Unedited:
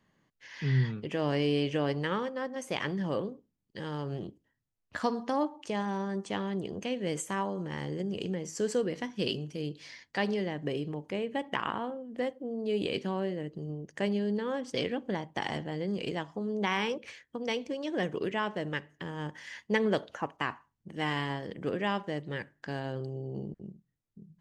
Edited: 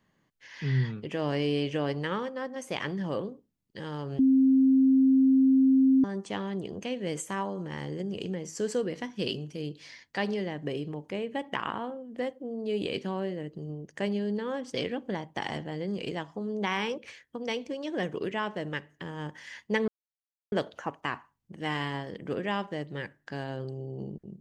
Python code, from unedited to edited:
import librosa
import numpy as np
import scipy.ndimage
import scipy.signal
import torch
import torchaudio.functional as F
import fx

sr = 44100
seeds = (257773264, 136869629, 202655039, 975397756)

y = fx.edit(x, sr, fx.bleep(start_s=4.19, length_s=1.85, hz=265.0, db=-17.5),
    fx.insert_silence(at_s=19.88, length_s=0.64), tone=tone)